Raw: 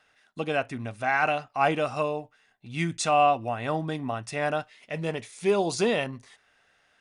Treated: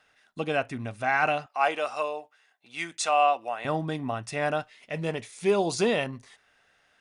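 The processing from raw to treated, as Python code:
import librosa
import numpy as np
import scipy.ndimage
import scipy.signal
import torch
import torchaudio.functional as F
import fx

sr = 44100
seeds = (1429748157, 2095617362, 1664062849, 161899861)

y = fx.highpass(x, sr, hz=540.0, slope=12, at=(1.46, 3.65))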